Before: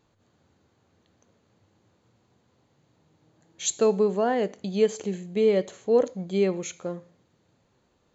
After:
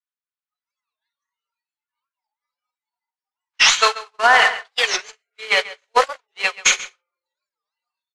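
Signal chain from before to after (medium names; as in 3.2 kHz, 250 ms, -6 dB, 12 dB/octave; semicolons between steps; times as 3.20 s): one-bit delta coder 64 kbps, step -37.5 dBFS; high-pass 1.1 kHz 24 dB/octave; simulated room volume 3900 m³, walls mixed, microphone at 1.9 m; level rider gain up to 3 dB; Chebyshev shaper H 2 -29 dB, 4 -27 dB, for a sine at -17 dBFS; gate -33 dBFS, range -55 dB; distance through air 110 m; echo from a far wall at 23 m, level -17 dB; spectral noise reduction 24 dB; loudness maximiser +26.5 dB; warped record 45 rpm, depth 250 cents; trim -1 dB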